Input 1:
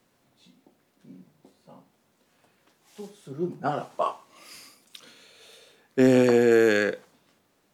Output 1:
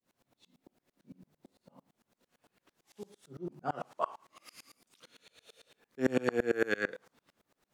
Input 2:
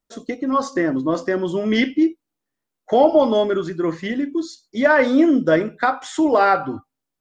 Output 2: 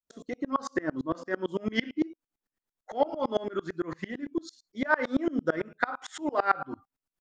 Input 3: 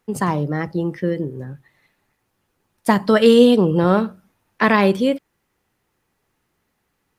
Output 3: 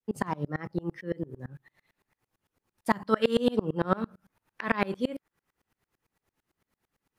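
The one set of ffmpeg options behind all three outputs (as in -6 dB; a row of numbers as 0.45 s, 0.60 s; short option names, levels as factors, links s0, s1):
-filter_complex "[0:a]adynamicequalizer=threshold=0.0224:dfrequency=1400:dqfactor=1.1:tfrequency=1400:tqfactor=1.1:attack=5:release=100:ratio=0.375:range=3:mode=boostabove:tftype=bell,asplit=2[s0][s1];[s1]acompressor=threshold=0.0447:ratio=6,volume=1.33[s2];[s0][s2]amix=inputs=2:normalize=0,aeval=exprs='val(0)*pow(10,-29*if(lt(mod(-8.9*n/s,1),2*abs(-8.9)/1000),1-mod(-8.9*n/s,1)/(2*abs(-8.9)/1000),(mod(-8.9*n/s,1)-2*abs(-8.9)/1000)/(1-2*abs(-8.9)/1000))/20)':c=same,volume=0.422"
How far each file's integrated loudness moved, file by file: -11.5 LU, -12.5 LU, -13.0 LU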